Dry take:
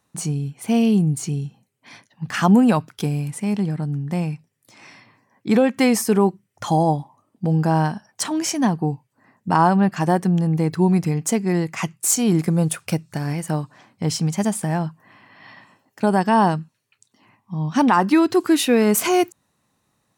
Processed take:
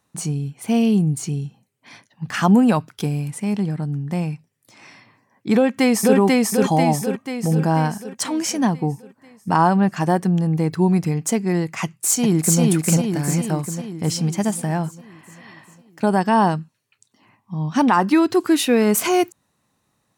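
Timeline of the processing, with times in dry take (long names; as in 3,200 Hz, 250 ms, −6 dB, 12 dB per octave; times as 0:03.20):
0:05.54–0:06.17: delay throw 490 ms, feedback 55%, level −0.5 dB
0:11.83–0:12.61: delay throw 400 ms, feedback 60%, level −1 dB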